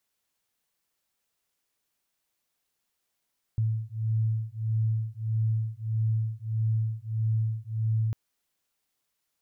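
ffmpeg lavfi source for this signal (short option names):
-f lavfi -i "aevalsrc='0.0398*(sin(2*PI*110*t)+sin(2*PI*111.6*t))':d=4.55:s=44100"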